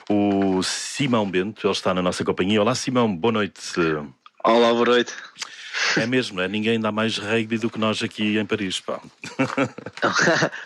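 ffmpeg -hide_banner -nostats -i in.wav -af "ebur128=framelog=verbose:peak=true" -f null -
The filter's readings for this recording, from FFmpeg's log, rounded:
Integrated loudness:
  I:         -21.7 LUFS
  Threshold: -32.0 LUFS
Loudness range:
  LRA:         2.8 LU
  Threshold: -42.1 LUFS
  LRA low:   -23.7 LUFS
  LRA high:  -20.9 LUFS
True peak:
  Peak:       -4.8 dBFS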